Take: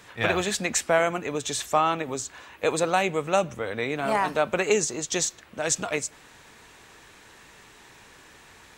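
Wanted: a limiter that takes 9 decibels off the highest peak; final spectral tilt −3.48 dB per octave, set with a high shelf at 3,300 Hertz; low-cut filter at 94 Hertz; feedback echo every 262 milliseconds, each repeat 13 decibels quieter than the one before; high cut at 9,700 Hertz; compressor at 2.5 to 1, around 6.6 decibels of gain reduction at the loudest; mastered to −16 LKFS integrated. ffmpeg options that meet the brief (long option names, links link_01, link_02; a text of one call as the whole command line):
ffmpeg -i in.wav -af "highpass=94,lowpass=9700,highshelf=frequency=3300:gain=-7,acompressor=threshold=-27dB:ratio=2.5,alimiter=limit=-22.5dB:level=0:latency=1,aecho=1:1:262|524|786:0.224|0.0493|0.0108,volume=18dB" out.wav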